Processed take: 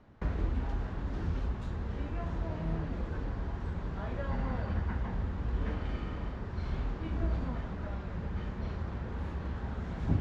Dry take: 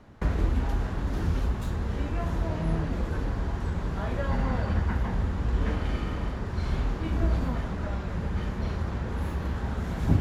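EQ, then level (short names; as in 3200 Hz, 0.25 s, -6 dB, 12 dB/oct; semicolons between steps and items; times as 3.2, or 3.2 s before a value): air absorption 99 m; -6.5 dB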